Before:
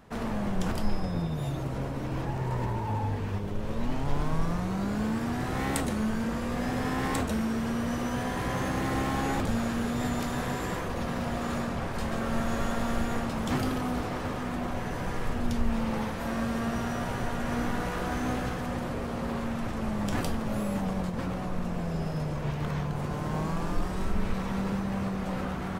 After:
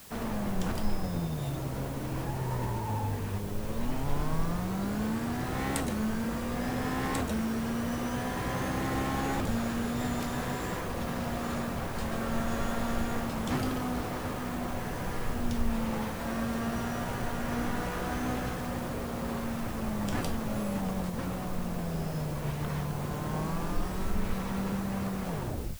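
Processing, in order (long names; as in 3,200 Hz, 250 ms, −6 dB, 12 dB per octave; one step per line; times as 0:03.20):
turntable brake at the end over 0.53 s
background noise white −49 dBFS
level −2 dB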